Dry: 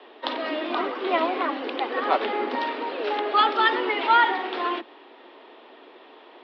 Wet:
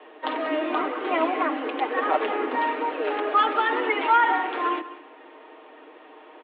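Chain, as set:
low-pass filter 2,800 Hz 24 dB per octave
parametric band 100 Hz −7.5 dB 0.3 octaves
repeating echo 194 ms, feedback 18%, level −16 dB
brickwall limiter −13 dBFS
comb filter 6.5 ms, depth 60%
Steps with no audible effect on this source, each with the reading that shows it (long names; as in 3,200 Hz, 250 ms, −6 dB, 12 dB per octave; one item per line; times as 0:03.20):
parametric band 100 Hz: nothing at its input below 200 Hz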